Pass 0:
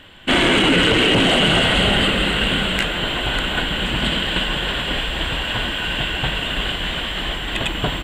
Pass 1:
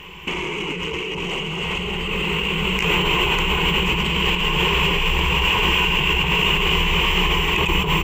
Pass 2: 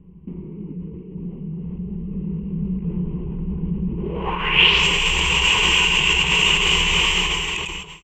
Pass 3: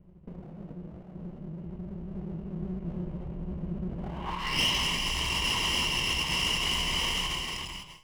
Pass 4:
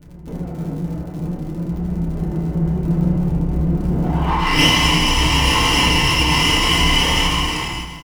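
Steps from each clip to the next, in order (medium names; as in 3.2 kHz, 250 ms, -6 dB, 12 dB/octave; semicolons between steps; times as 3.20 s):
rippled EQ curve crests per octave 0.77, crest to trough 17 dB; compressor with a negative ratio -21 dBFS, ratio -1
fade out at the end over 1.04 s; low-pass sweep 210 Hz -> 7.3 kHz, 3.89–4.87 s; treble shelf 2.1 kHz +9 dB; trim -4 dB
comb filter that takes the minimum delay 1 ms; feedback comb 120 Hz, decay 0.99 s, harmonics all, mix 60%; saturation -18.5 dBFS, distortion -17 dB; trim -1.5 dB
crackle 58 per s -40 dBFS; on a send: early reflections 29 ms -8.5 dB, 78 ms -7 dB; on the sum: FDN reverb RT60 0.52 s, low-frequency decay 1.2×, high-frequency decay 0.3×, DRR -5 dB; trim +7.5 dB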